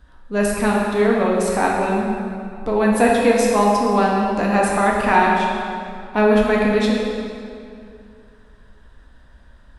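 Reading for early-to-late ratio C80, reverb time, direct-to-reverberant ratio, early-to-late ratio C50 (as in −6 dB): 1.0 dB, 2.5 s, −3.5 dB, −0.5 dB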